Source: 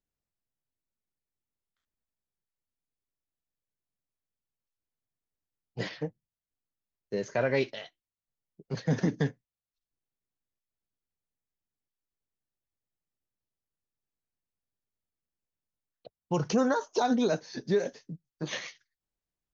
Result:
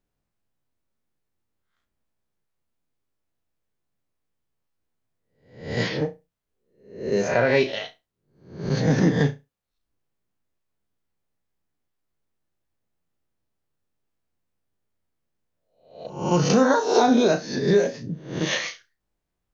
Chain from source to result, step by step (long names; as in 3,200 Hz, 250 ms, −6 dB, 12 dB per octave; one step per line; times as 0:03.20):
peak hold with a rise ahead of every peak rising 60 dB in 0.52 s
in parallel at −1 dB: downward compressor, threshold −35 dBFS, peak gain reduction 14 dB
on the sum: flutter between parallel walls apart 5.9 metres, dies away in 0.23 s
one half of a high-frequency compander decoder only
level +4.5 dB